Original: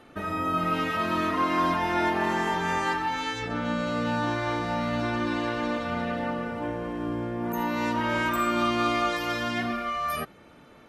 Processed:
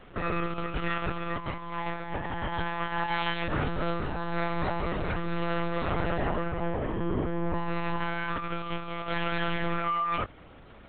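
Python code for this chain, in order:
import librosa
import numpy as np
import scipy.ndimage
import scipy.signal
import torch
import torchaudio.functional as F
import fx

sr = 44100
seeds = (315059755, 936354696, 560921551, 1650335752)

y = fx.low_shelf(x, sr, hz=380.0, db=-3.5, at=(7.83, 8.77))
y = fx.over_compress(y, sr, threshold_db=-29.0, ratio=-0.5)
y = fx.lpc_monotone(y, sr, seeds[0], pitch_hz=170.0, order=10)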